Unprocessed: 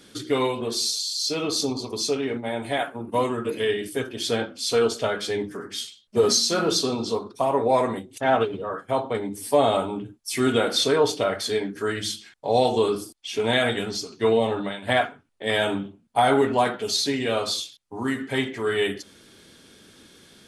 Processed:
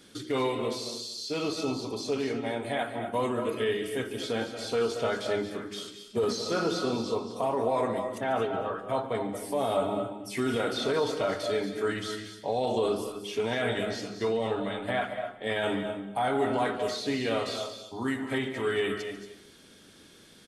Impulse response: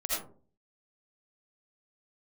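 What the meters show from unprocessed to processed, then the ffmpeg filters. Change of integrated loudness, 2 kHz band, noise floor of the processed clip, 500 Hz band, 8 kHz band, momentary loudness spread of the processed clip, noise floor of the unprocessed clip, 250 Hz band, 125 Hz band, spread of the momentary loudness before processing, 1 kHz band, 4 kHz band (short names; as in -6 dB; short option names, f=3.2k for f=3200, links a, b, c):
-6.0 dB, -5.5 dB, -54 dBFS, -5.5 dB, -13.0 dB, 7 LU, -55 dBFS, -4.5 dB, -5.0 dB, 10 LU, -6.0 dB, -9.5 dB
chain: -filter_complex "[0:a]acrossover=split=2900[a][b];[b]acompressor=threshold=-36dB:ratio=4:attack=1:release=60[c];[a][c]amix=inputs=2:normalize=0,alimiter=limit=-15.5dB:level=0:latency=1:release=24,aecho=1:1:231:0.188,asplit=2[d][e];[1:a]atrim=start_sample=2205,adelay=144[f];[e][f]afir=irnorm=-1:irlink=0,volume=-13.5dB[g];[d][g]amix=inputs=2:normalize=0,volume=-4dB"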